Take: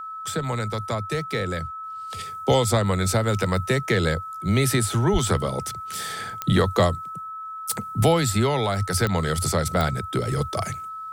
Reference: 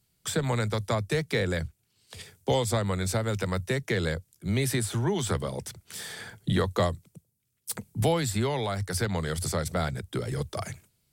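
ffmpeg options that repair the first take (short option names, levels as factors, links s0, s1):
-filter_complex "[0:a]adeclick=t=4,bandreject=f=1300:w=30,asplit=3[s0][s1][s2];[s0]afade=t=out:st=5.12:d=0.02[s3];[s1]highpass=f=140:w=0.5412,highpass=f=140:w=1.3066,afade=t=in:st=5.12:d=0.02,afade=t=out:st=5.24:d=0.02[s4];[s2]afade=t=in:st=5.24:d=0.02[s5];[s3][s4][s5]amix=inputs=3:normalize=0,asetnsamples=n=441:p=0,asendcmd='1.84 volume volume -6dB',volume=1"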